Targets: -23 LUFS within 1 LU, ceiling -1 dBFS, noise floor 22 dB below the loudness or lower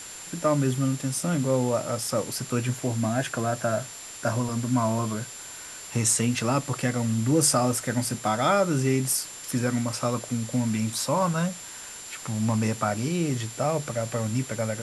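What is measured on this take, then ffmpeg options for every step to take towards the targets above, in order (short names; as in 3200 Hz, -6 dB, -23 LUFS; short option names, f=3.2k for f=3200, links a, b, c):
steady tone 7300 Hz; tone level -41 dBFS; noise floor -41 dBFS; noise floor target -48 dBFS; loudness -26.0 LUFS; peak -9.5 dBFS; loudness target -23.0 LUFS
-> -af "bandreject=f=7.3k:w=30"
-af "afftdn=nr=7:nf=-41"
-af "volume=3dB"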